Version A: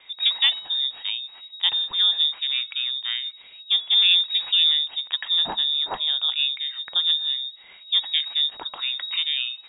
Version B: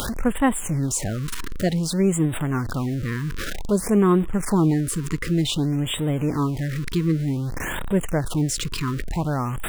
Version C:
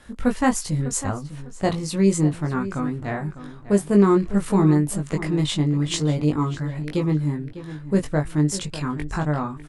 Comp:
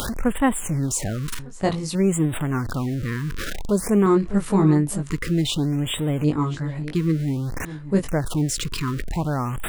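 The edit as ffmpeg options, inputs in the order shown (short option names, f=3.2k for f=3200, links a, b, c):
-filter_complex "[2:a]asplit=4[a][b][c][d];[1:a]asplit=5[e][f][g][h][i];[e]atrim=end=1.392[j];[a]atrim=start=1.388:end=1.952[k];[f]atrim=start=1.948:end=4.062[l];[b]atrim=start=4.058:end=5.102[m];[g]atrim=start=5.098:end=6.242[n];[c]atrim=start=6.238:end=6.952[o];[h]atrim=start=6.948:end=7.652[p];[d]atrim=start=7.648:end=8.082[q];[i]atrim=start=8.078[r];[j][k]acrossfade=d=0.004:c1=hsin:c2=hsin[s];[s][l]acrossfade=d=0.004:c1=hsin:c2=hsin[t];[t][m]acrossfade=d=0.004:c1=hsin:c2=hsin[u];[u][n]acrossfade=d=0.004:c1=hsin:c2=hsin[v];[v][o]acrossfade=d=0.004:c1=hsin:c2=hsin[w];[w][p]acrossfade=d=0.004:c1=hsin:c2=hsin[x];[x][q]acrossfade=d=0.004:c1=hsin:c2=hsin[y];[y][r]acrossfade=d=0.004:c1=hsin:c2=hsin"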